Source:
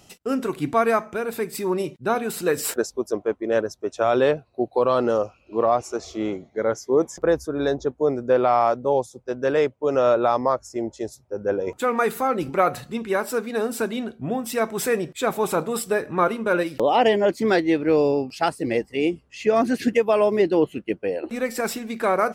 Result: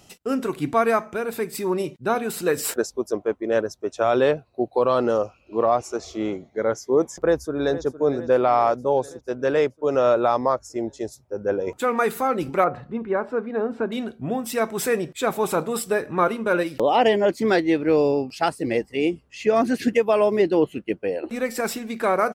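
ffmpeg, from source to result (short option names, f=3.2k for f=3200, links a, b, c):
-filter_complex "[0:a]asplit=2[a][b];[b]afade=t=in:st=7.18:d=0.01,afade=t=out:st=7.82:d=0.01,aecho=0:1:460|920|1380|1840|2300|2760|3220:0.199526|0.129692|0.0842998|0.0547949|0.0356167|0.0231508|0.015048[c];[a][c]amix=inputs=2:normalize=0,asettb=1/sr,asplit=3[d][e][f];[d]atrim=end=12.644[g];[e]atrim=start=12.64:end=13.92,asetpts=PTS-STARTPTS,afade=t=in:d=0.004:c=qsin,afade=t=out:st=1.276:d=0.004:c=qsin,lowpass=1.4k[h];[f]atrim=start=13.916[i];[g][h]acrossfade=d=0.004:c1=hsin:c2=qsin[j];[j][i]acrossfade=d=0.004:c1=qsin:c2=hsin"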